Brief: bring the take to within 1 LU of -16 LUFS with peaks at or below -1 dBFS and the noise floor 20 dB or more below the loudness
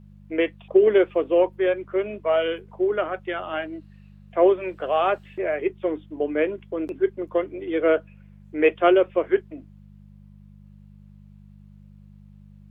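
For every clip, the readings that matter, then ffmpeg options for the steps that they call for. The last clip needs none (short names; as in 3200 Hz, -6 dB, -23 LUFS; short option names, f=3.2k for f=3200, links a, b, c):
hum 50 Hz; harmonics up to 200 Hz; hum level -45 dBFS; loudness -23.5 LUFS; peak -6.0 dBFS; loudness target -16.0 LUFS
-> -af "bandreject=f=50:t=h:w=4,bandreject=f=100:t=h:w=4,bandreject=f=150:t=h:w=4,bandreject=f=200:t=h:w=4"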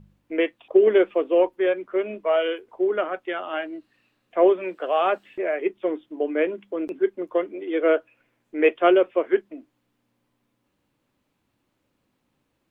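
hum none; loudness -23.5 LUFS; peak -6.0 dBFS; loudness target -16.0 LUFS
-> -af "volume=7.5dB,alimiter=limit=-1dB:level=0:latency=1"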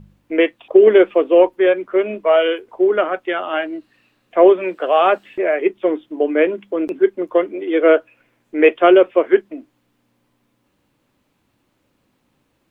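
loudness -16.0 LUFS; peak -1.0 dBFS; noise floor -67 dBFS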